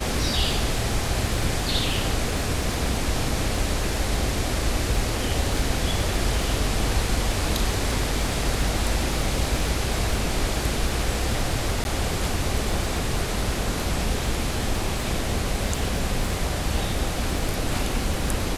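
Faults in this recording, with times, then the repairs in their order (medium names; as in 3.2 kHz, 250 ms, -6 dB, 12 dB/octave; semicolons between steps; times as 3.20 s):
crackle 56 per s -31 dBFS
11.84–11.85 s: dropout 11 ms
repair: de-click; interpolate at 11.84 s, 11 ms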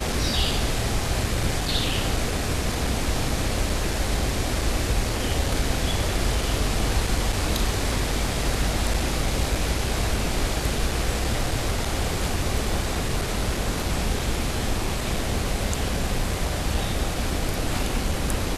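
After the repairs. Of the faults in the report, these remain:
nothing left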